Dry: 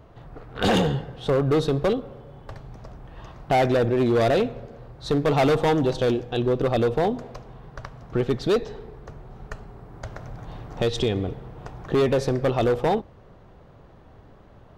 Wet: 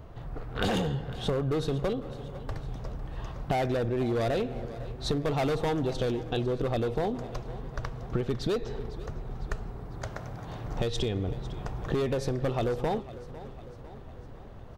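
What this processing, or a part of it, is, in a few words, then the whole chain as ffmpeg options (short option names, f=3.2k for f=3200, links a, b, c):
ASMR close-microphone chain: -filter_complex "[0:a]asettb=1/sr,asplit=3[a][b][c];[a]atrim=end=10.034[d];[b]atrim=start=10.03:end=10.64,asetpts=PTS-STARTPTS,afade=t=in:d=0.004:c=qsin,afade=t=out:st=0.606:d=0.004:c=qsin,highpass=f=150:p=1[e];[c]atrim=start=10.636[f];[d][e]acrossfade=d=0.004:c1=hsin:c2=qsin[g];[g][f]acrossfade=d=0.004:c1=qsin:c2=hsin,lowshelf=f=100:g=7.5,acompressor=threshold=-26dB:ratio=6,highshelf=f=6.6k:g=4.5,aecho=1:1:502|1004|1506|2008|2510:0.15|0.0853|0.0486|0.0277|0.0158"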